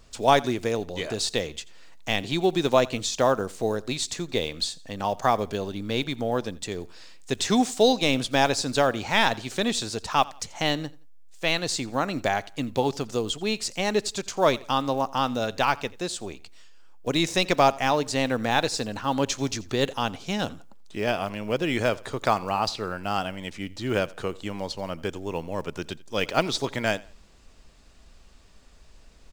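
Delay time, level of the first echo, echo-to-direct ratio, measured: 86 ms, -22.0 dB, -21.5 dB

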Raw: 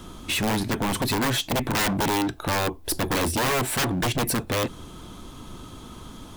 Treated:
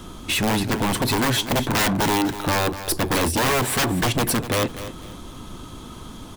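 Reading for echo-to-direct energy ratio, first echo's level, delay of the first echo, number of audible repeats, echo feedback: -12.0 dB, -12.5 dB, 246 ms, 2, 27%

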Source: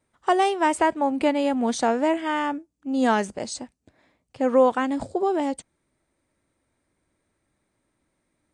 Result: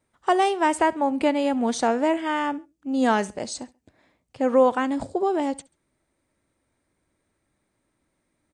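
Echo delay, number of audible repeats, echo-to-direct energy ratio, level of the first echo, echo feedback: 68 ms, 2, -22.0 dB, -22.5 dB, 35%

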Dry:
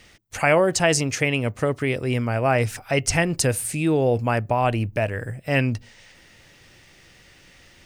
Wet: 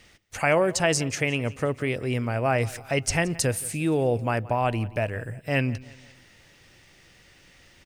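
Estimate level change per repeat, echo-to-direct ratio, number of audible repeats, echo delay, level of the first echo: -7.0 dB, -19.5 dB, 3, 174 ms, -20.5 dB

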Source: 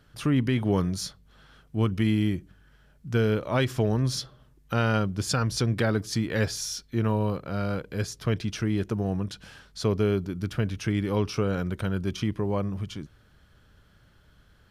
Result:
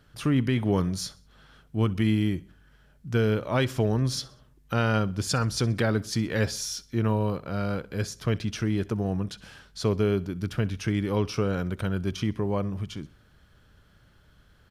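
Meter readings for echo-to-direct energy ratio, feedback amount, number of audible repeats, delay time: -20.5 dB, 43%, 2, 64 ms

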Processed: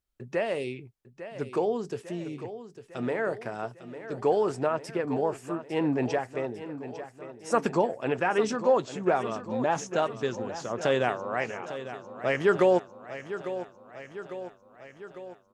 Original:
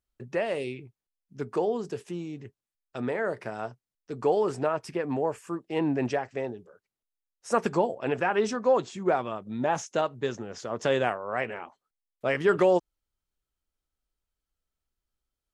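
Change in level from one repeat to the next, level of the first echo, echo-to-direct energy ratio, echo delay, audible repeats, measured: -4.5 dB, -12.5 dB, -10.5 dB, 851 ms, 5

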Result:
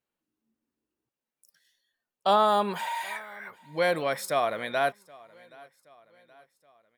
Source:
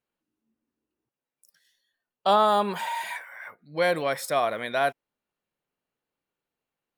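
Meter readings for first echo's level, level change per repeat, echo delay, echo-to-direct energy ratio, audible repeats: -24.0 dB, -6.0 dB, 774 ms, -23.0 dB, 2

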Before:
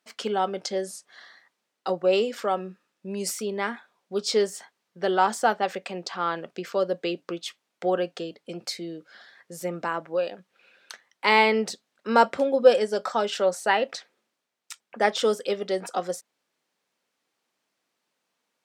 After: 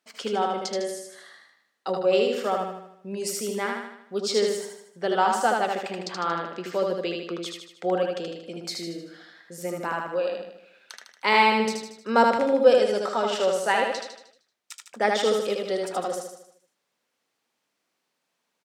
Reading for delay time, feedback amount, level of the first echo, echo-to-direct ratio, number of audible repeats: 77 ms, 50%, -3.0 dB, -2.0 dB, 6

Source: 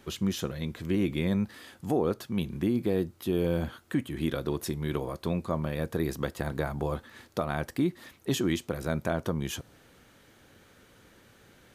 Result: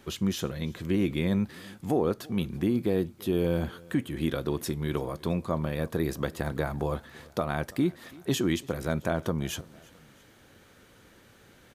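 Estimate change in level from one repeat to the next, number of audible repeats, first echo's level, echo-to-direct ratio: -5.0 dB, 2, -23.5 dB, -22.5 dB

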